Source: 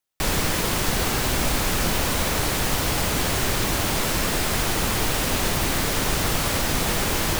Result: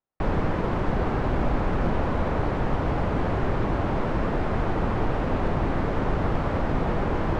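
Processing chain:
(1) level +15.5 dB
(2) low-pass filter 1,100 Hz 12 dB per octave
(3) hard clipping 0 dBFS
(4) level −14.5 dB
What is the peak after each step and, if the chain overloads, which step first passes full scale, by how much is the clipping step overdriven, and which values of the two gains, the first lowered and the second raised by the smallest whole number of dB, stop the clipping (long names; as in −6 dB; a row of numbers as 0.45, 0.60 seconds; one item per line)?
+6.5, +4.5, 0.0, −14.5 dBFS
step 1, 4.5 dB
step 1 +10.5 dB, step 4 −9.5 dB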